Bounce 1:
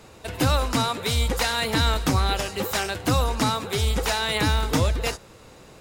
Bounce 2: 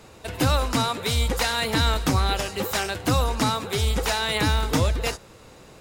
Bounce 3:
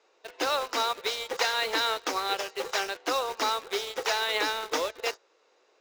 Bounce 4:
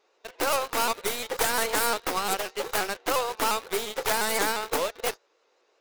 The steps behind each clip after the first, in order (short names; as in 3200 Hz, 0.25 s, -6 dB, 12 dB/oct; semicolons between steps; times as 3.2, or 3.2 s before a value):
nothing audible
elliptic band-pass 390–6200 Hz, stop band 40 dB; in parallel at -5 dB: bit-crush 5-bit; on the sum: upward expander 1.5:1, over -40 dBFS; gain -4.5 dB
tracing distortion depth 0.36 ms; in parallel at -4 dB: crossover distortion -48.5 dBFS; on the sum: shaped vibrato saw up 5.7 Hz, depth 100 cents; gain -2 dB